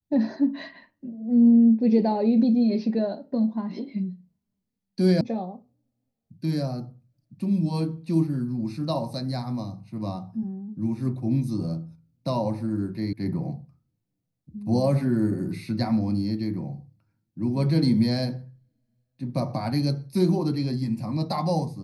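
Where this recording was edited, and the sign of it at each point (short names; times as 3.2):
5.21 sound cut off
13.13 sound cut off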